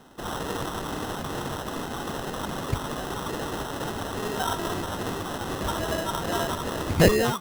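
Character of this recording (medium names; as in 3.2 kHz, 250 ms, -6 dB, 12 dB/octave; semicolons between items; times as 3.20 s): phasing stages 8, 2.4 Hz, lowest notch 540–3300 Hz; aliases and images of a low sample rate 2.3 kHz, jitter 0%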